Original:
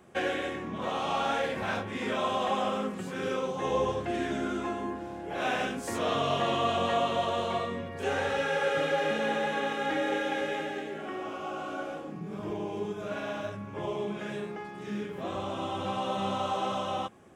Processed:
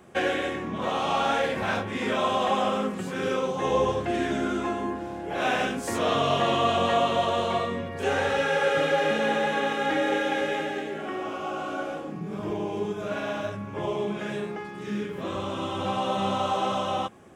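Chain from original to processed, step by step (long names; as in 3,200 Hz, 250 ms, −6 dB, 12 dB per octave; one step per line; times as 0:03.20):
0:14.59–0:15.79: parametric band 720 Hz −11 dB 0.26 octaves
level +4.5 dB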